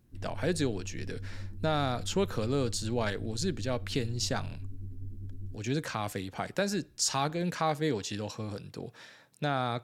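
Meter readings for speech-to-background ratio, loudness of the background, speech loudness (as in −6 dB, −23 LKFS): 11.5 dB, −44.0 LKFS, −32.5 LKFS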